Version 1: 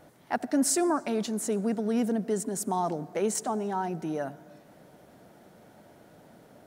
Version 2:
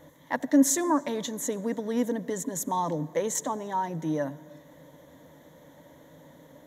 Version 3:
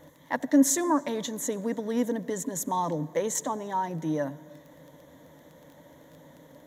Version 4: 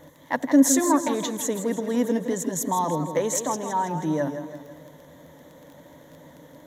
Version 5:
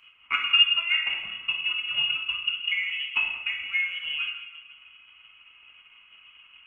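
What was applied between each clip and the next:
EQ curve with evenly spaced ripples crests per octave 1.1, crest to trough 13 dB
surface crackle 12 per second −41 dBFS
feedback echo with a swinging delay time 163 ms, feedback 49%, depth 106 cents, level −9 dB; level +3.5 dB
voice inversion scrambler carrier 3,100 Hz; transient designer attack +8 dB, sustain −7 dB; reverb whose tail is shaped and stops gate 270 ms falling, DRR 0 dB; level −8.5 dB

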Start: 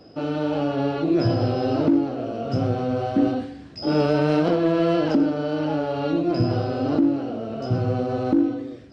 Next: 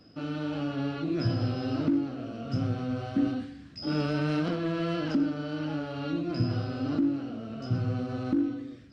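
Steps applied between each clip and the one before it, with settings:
flat-topped bell 580 Hz −8.5 dB
level −5 dB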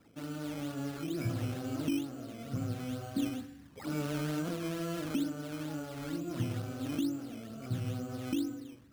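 sample-and-hold swept by an LFO 11×, swing 100% 2.2 Hz
level −6.5 dB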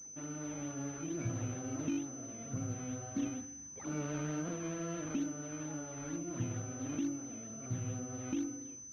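switching amplifier with a slow clock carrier 6,100 Hz
level −3.5 dB

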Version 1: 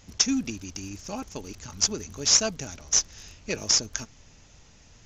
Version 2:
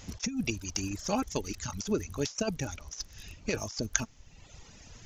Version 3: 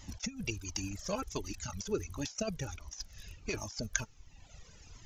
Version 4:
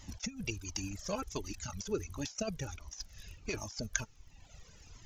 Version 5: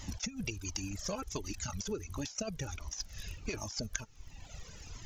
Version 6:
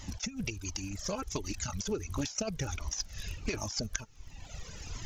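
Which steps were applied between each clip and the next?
reverb reduction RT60 0.99 s; compressor whose output falls as the input rises −30 dBFS, ratio −0.5
flanger whose copies keep moving one way falling 1.4 Hz
surface crackle 30 per second −56 dBFS; level −1 dB
downward compressor 5 to 1, threshold −42 dBFS, peak gain reduction 14 dB; level +7 dB
camcorder AGC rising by 6.3 dB per second; highs frequency-modulated by the lows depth 0.15 ms

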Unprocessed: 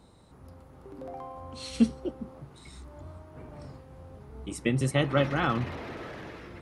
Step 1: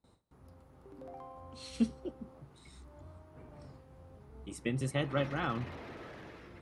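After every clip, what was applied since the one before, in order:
noise gate with hold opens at −48 dBFS
level −7.5 dB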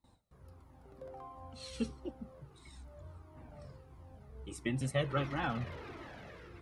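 flanger whose copies keep moving one way falling 1.5 Hz
level +4 dB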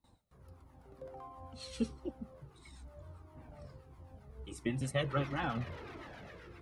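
two-band tremolo in antiphase 7.7 Hz, depth 50%, crossover 720 Hz
level +2 dB

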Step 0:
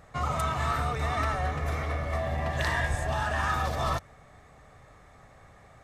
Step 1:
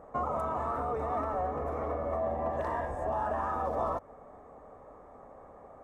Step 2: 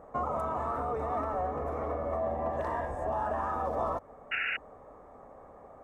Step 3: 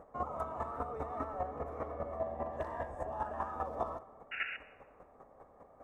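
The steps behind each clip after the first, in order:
high-shelf EQ 2,800 Hz −10.5 dB; downward compressor, threshold −31 dBFS, peak gain reduction 7.5 dB; octave-band graphic EQ 125/250/500/1,000/2,000/4,000 Hz −8/+9/+11/+10/−5/−10 dB; level −4.5 dB
sound drawn into the spectrogram noise, 0:04.31–0:04.57, 1,300–2,900 Hz −32 dBFS
square-wave tremolo 5 Hz, depth 60%, duty 15%; convolution reverb RT60 1.5 s, pre-delay 55 ms, DRR 17.5 dB; level −1.5 dB

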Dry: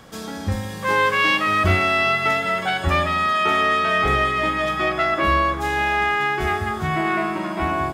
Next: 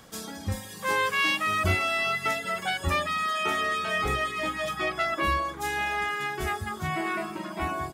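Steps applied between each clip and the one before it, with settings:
high-shelf EQ 4,800 Hz +8.5 dB
reverb reduction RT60 0.92 s
dynamic equaliser 9,800 Hz, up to +4 dB, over −42 dBFS, Q 0.75
level −6.5 dB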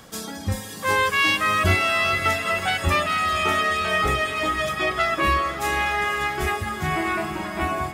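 feedback delay with all-pass diffusion 488 ms, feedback 61%, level −11 dB
level +5 dB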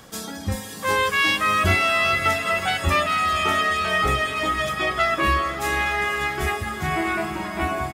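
double-tracking delay 15 ms −13 dB

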